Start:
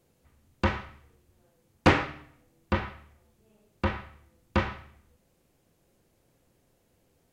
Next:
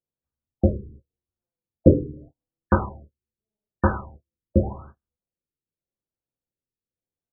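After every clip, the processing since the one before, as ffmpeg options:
-af "agate=range=-37dB:threshold=-51dB:ratio=16:detection=peak,afftfilt=real='re*lt(b*sr/1024,500*pow(1800/500,0.5+0.5*sin(2*PI*0.85*pts/sr)))':imag='im*lt(b*sr/1024,500*pow(1800/500,0.5+0.5*sin(2*PI*0.85*pts/sr)))':win_size=1024:overlap=0.75,volume=8dB"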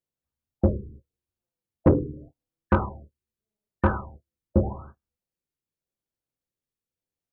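-af "asoftclip=type=tanh:threshold=-10dB"

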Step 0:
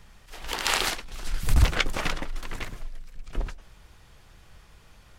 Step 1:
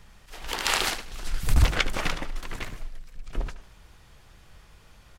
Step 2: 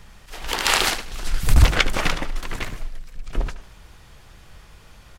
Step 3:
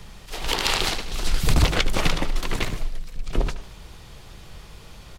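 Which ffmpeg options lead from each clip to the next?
-af "aecho=1:1:75|150|225|300:0.178|0.0747|0.0314|0.0132"
-af "volume=8dB,asoftclip=hard,volume=-8dB,volume=6dB"
-filter_complex "[0:a]equalizer=f=160:t=o:w=0.67:g=3,equalizer=f=400:t=o:w=0.67:g=3,equalizer=f=1.6k:t=o:w=0.67:g=-4,equalizer=f=4k:t=o:w=0.67:g=3,acrossover=split=160|6700[a][b][c];[a]acompressor=threshold=-19dB:ratio=4[d];[b]acompressor=threshold=-25dB:ratio=4[e];[c]acompressor=threshold=-41dB:ratio=4[f];[d][e][f]amix=inputs=3:normalize=0,volume=3.5dB"

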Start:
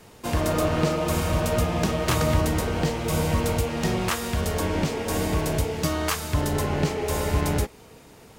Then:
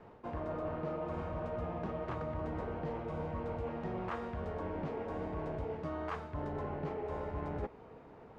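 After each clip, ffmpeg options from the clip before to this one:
-af "lowpass=1.1k,lowshelf=f=370:g=-8,areverse,acompressor=threshold=-36dB:ratio=6,areverse"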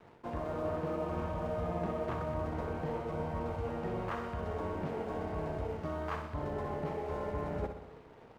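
-af "aeval=exprs='sgn(val(0))*max(abs(val(0))-0.00106,0)':c=same,aecho=1:1:63|126|189|252|315|378|441:0.398|0.235|0.139|0.0818|0.0482|0.0285|0.0168,volume=2dB"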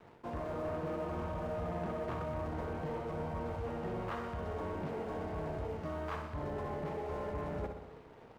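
-af "asoftclip=type=tanh:threshold=-31.5dB"

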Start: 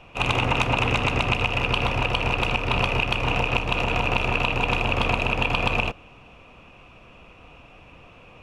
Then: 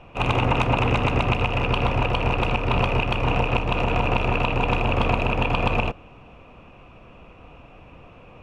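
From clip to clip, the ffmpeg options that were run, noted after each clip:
-af "highshelf=f=2.1k:g=-11,volume=3.5dB"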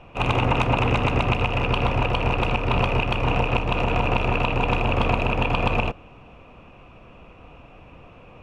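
-af anull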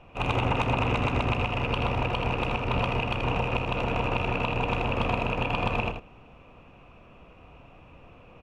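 -af "aecho=1:1:81:0.473,volume=-5.5dB"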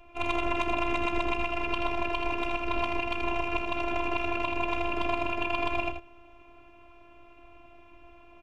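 -af "afftfilt=real='hypot(re,im)*cos(PI*b)':imag='0':win_size=512:overlap=0.75,volume=2dB"

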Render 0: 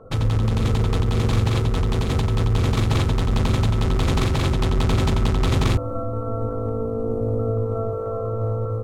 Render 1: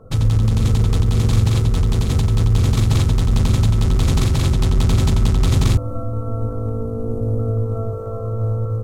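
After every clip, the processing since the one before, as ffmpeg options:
-af "bass=f=250:g=8,treble=f=4k:g=10,volume=-3dB"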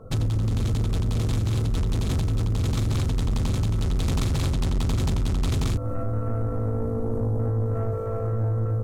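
-af "acompressor=threshold=-16dB:ratio=4,asoftclip=type=tanh:threshold=-19.5dB"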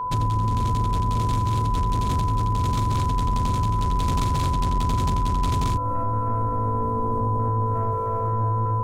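-af "aeval=exprs='val(0)+0.0562*sin(2*PI*1000*n/s)':c=same"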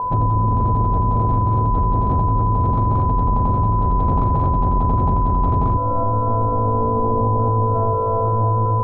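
-af "acontrast=26,lowpass=f=770:t=q:w=1.9"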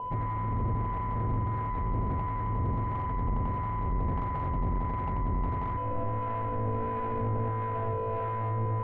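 -filter_complex "[0:a]asoftclip=type=tanh:threshold=-13.5dB,acrossover=split=690[a][b];[a]aeval=exprs='val(0)*(1-0.5/2+0.5/2*cos(2*PI*1.5*n/s))':c=same[c];[b]aeval=exprs='val(0)*(1-0.5/2-0.5/2*cos(2*PI*1.5*n/s))':c=same[d];[c][d]amix=inputs=2:normalize=0,volume=-8.5dB"

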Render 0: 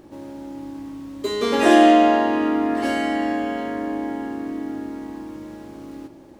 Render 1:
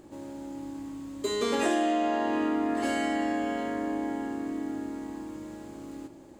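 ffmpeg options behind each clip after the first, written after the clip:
-af "acompressor=threshold=-19dB:ratio=6,equalizer=f=7.4k:t=o:w=0.53:g=8.5,bandreject=f=5.6k:w=17,volume=-4.5dB"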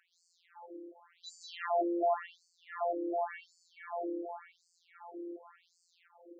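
-filter_complex "[0:a]asplit=2[a][b];[b]highpass=f=720:p=1,volume=13dB,asoftclip=type=tanh:threshold=-13dB[c];[a][c]amix=inputs=2:normalize=0,lowpass=f=1.1k:p=1,volume=-6dB,afftfilt=real='hypot(re,im)*cos(PI*b)':imag='0':win_size=1024:overlap=0.75,afftfilt=real='re*between(b*sr/1024,380*pow(6300/380,0.5+0.5*sin(2*PI*0.9*pts/sr))/1.41,380*pow(6300/380,0.5+0.5*sin(2*PI*0.9*pts/sr))*1.41)':imag='im*between(b*sr/1024,380*pow(6300/380,0.5+0.5*sin(2*PI*0.9*pts/sr))/1.41,380*pow(6300/380,0.5+0.5*sin(2*PI*0.9*pts/sr))*1.41)':win_size=1024:overlap=0.75"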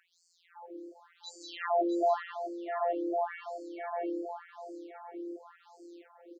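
-af "aecho=1:1:654:0.316,volume=2.5dB"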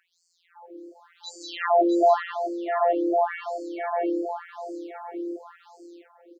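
-af "dynaudnorm=f=330:g=7:m=9dB"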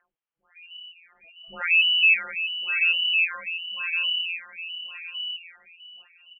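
-af "lowpass=f=2.8k:t=q:w=0.5098,lowpass=f=2.8k:t=q:w=0.6013,lowpass=f=2.8k:t=q:w=0.9,lowpass=f=2.8k:t=q:w=2.563,afreqshift=-3300"

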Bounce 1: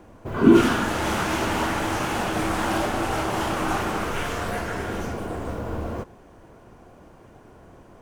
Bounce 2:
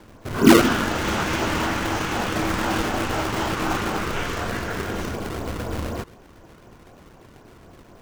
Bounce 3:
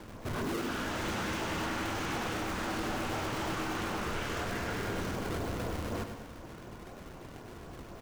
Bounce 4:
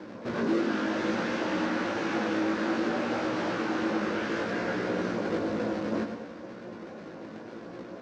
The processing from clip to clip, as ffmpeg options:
-filter_complex "[0:a]lowpass=f=7.5k:w=0.5412,lowpass=f=7.5k:w=1.3066,acrossover=split=800|1400[a][b][c];[a]acrusher=samples=31:mix=1:aa=0.000001:lfo=1:lforange=49.6:lforate=4[d];[d][b][c]amix=inputs=3:normalize=0,volume=1.5dB"
-af "acompressor=threshold=-31dB:ratio=5,asoftclip=type=hard:threshold=-32dB,aecho=1:1:98|196|294|392|490|588|686:0.398|0.235|0.139|0.0818|0.0482|0.0285|0.0168"
-af "flanger=delay=16.5:depth=2.1:speed=0.62,highpass=170,equalizer=f=210:t=q:w=4:g=9,equalizer=f=320:t=q:w=4:g=8,equalizer=f=530:t=q:w=4:g=9,equalizer=f=1.6k:t=q:w=4:g=4,equalizer=f=3.1k:t=q:w=4:g=-3,lowpass=f=5.6k:w=0.5412,lowpass=f=5.6k:w=1.3066,volume=4.5dB"

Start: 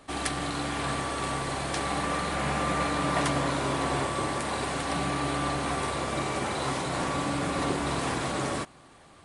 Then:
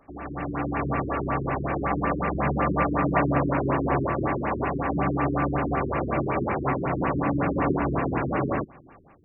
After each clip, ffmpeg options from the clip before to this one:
-af "dynaudnorm=f=150:g=5:m=10dB,afftfilt=real='re*lt(b*sr/1024,400*pow(2900/400,0.5+0.5*sin(2*PI*5.4*pts/sr)))':imag='im*lt(b*sr/1024,400*pow(2900/400,0.5+0.5*sin(2*PI*5.4*pts/sr)))':win_size=1024:overlap=0.75,volume=-4dB"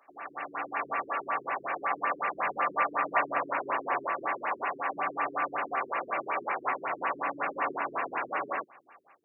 -af "highpass=860"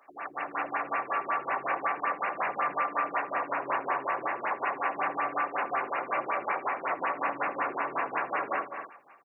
-af "alimiter=limit=-22.5dB:level=0:latency=1:release=303,aecho=1:1:206|257:0.376|0.224,volume=3dB"

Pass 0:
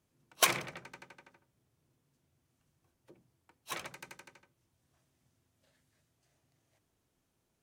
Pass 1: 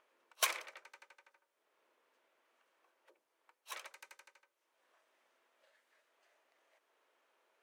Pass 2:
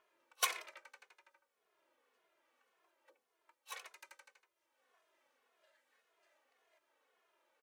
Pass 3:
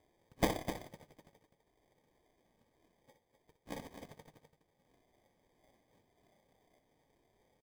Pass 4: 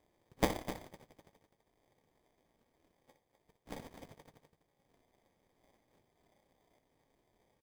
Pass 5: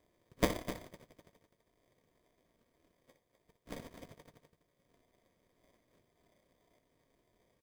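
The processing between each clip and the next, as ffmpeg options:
-filter_complex "[0:a]highpass=f=510:w=0.5412,highpass=f=510:w=1.3066,equalizer=f=740:t=o:w=0.27:g=-6,acrossover=split=3000[a][b];[a]acompressor=mode=upward:threshold=-55dB:ratio=2.5[c];[c][b]amix=inputs=2:normalize=0,volume=-6dB"
-filter_complex "[0:a]asplit=2[a][b];[b]adelay=2.4,afreqshift=-1.8[c];[a][c]amix=inputs=2:normalize=1,volume=1.5dB"
-af "acrusher=samples=32:mix=1:aa=0.000001,aecho=1:1:61.22|253.6:0.282|0.355,volume=3.5dB"
-af "tremolo=f=250:d=0.857,volume=2.5dB"
-af "asuperstop=centerf=820:order=4:qfactor=5.3,volume=1dB"

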